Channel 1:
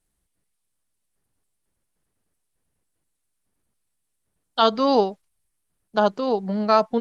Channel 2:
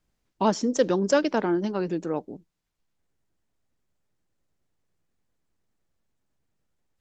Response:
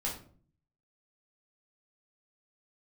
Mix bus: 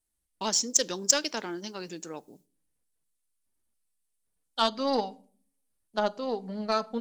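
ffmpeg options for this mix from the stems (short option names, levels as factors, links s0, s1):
-filter_complex "[0:a]flanger=delay=3.1:depth=1.5:regen=-40:speed=0.84:shape=triangular,volume=0.668,asplit=2[s0][s1];[s1]volume=0.15[s2];[1:a]agate=range=0.0224:threshold=0.00891:ratio=3:detection=peak,crystalizer=i=8:c=0,volume=0.335,asplit=2[s3][s4];[s4]volume=0.0668[s5];[2:a]atrim=start_sample=2205[s6];[s2][s5]amix=inputs=2:normalize=0[s7];[s7][s6]afir=irnorm=-1:irlink=0[s8];[s0][s3][s8]amix=inputs=3:normalize=0,highshelf=f=3600:g=8.5,aeval=exprs='0.794*(cos(1*acos(clip(val(0)/0.794,-1,1)))-cos(1*PI/2))+0.0447*(cos(7*acos(clip(val(0)/0.794,-1,1)))-cos(7*PI/2))':c=same"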